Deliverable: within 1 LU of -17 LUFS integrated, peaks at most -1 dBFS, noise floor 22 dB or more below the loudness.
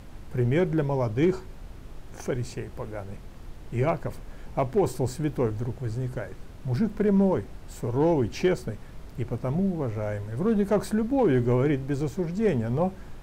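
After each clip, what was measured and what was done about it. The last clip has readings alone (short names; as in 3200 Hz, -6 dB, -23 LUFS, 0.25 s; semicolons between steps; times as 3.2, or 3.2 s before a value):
clipped 0.3%; flat tops at -15.0 dBFS; noise floor -43 dBFS; noise floor target -49 dBFS; loudness -27.0 LUFS; peak -15.0 dBFS; loudness target -17.0 LUFS
-> clip repair -15 dBFS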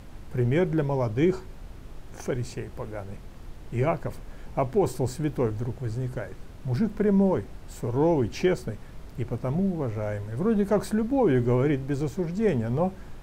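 clipped 0.0%; noise floor -43 dBFS; noise floor target -49 dBFS
-> noise print and reduce 6 dB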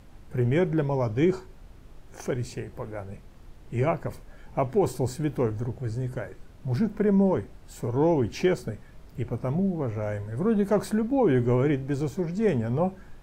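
noise floor -49 dBFS; loudness -27.0 LUFS; peak -13.0 dBFS; loudness target -17.0 LUFS
-> gain +10 dB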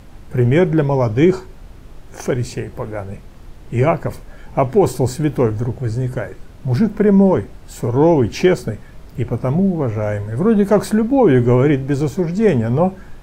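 loudness -17.0 LUFS; peak -3.0 dBFS; noise floor -39 dBFS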